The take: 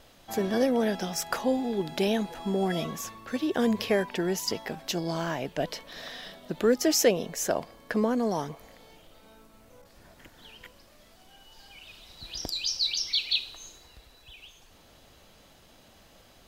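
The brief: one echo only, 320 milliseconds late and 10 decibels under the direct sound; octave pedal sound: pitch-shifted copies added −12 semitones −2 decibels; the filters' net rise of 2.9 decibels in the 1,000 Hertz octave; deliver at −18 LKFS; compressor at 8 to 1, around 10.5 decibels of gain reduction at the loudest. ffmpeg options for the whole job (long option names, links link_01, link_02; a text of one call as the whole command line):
ffmpeg -i in.wav -filter_complex "[0:a]equalizer=frequency=1000:width_type=o:gain=4,acompressor=threshold=-26dB:ratio=8,aecho=1:1:320:0.316,asplit=2[link_01][link_02];[link_02]asetrate=22050,aresample=44100,atempo=2,volume=-2dB[link_03];[link_01][link_03]amix=inputs=2:normalize=0,volume=12dB" out.wav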